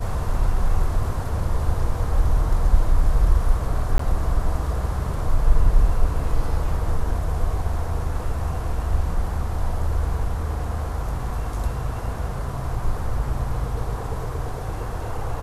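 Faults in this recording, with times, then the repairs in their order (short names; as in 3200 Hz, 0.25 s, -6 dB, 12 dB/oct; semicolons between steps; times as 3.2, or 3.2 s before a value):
3.98–3.99 gap 14 ms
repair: interpolate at 3.98, 14 ms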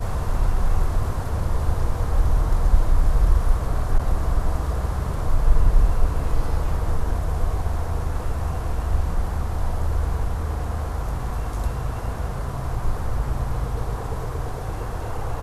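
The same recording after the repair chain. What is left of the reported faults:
none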